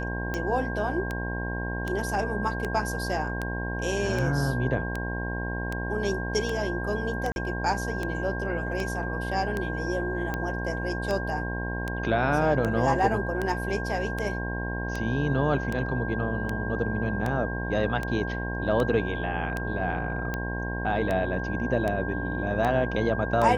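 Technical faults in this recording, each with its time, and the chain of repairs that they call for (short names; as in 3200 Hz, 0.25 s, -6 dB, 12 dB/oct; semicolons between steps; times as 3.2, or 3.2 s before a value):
buzz 60 Hz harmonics 18 -32 dBFS
tick 78 rpm -16 dBFS
tone 1600 Hz -34 dBFS
7.32–7.36 gap 41 ms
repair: de-click; notch 1600 Hz, Q 30; de-hum 60 Hz, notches 18; interpolate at 7.32, 41 ms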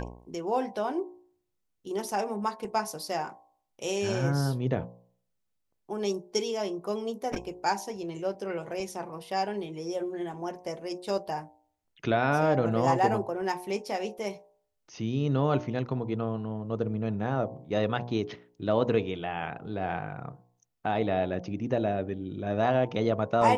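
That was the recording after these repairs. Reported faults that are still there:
none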